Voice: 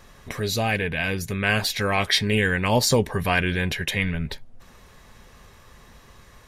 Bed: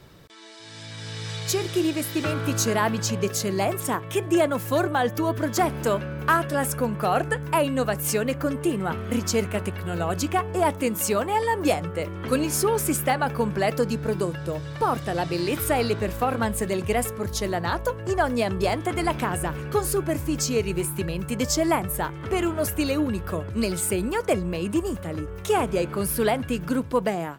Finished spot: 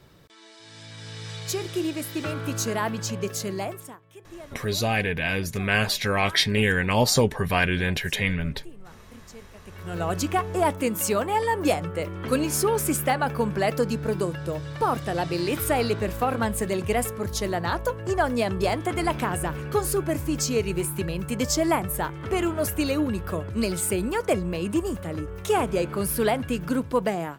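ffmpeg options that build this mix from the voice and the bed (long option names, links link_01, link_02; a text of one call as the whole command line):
ffmpeg -i stem1.wav -i stem2.wav -filter_complex "[0:a]adelay=4250,volume=-0.5dB[link_01];[1:a]volume=18dB,afade=type=out:start_time=3.49:duration=0.48:silence=0.11885,afade=type=in:start_time=9.64:duration=0.43:silence=0.0794328[link_02];[link_01][link_02]amix=inputs=2:normalize=0" out.wav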